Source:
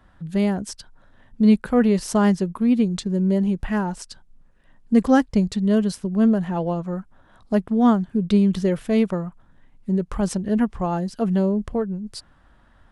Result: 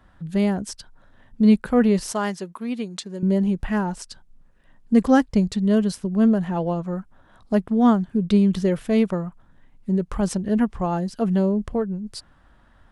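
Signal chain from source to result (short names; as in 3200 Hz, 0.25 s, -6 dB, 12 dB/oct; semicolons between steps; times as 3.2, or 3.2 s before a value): 2.12–3.23 HPF 730 Hz 6 dB/oct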